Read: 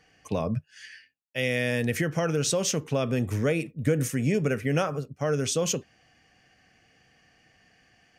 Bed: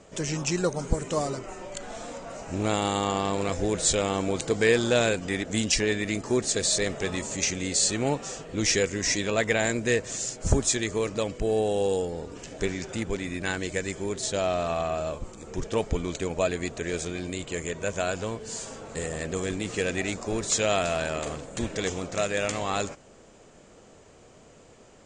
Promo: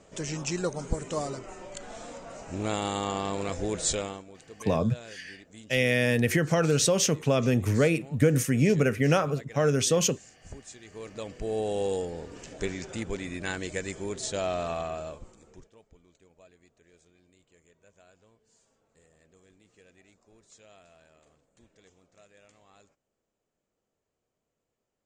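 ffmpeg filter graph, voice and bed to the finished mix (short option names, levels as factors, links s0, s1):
-filter_complex "[0:a]adelay=4350,volume=1.33[s0];[1:a]volume=5.31,afade=t=out:st=3.92:d=0.32:silence=0.125893,afade=t=in:st=10.83:d=0.92:silence=0.11885,afade=t=out:st=14.66:d=1.06:silence=0.0421697[s1];[s0][s1]amix=inputs=2:normalize=0"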